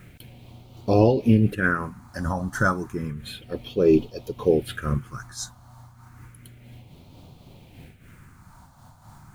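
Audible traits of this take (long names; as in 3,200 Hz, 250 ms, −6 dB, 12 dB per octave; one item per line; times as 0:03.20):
phaser sweep stages 4, 0.31 Hz, lowest notch 410–1,700 Hz
a quantiser's noise floor 12 bits, dither triangular
amplitude modulation by smooth noise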